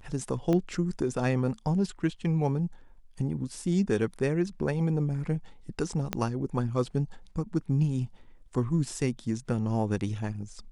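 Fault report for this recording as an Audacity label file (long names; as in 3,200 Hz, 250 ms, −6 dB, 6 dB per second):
0.530000	0.530000	click −17 dBFS
6.130000	6.130000	click −13 dBFS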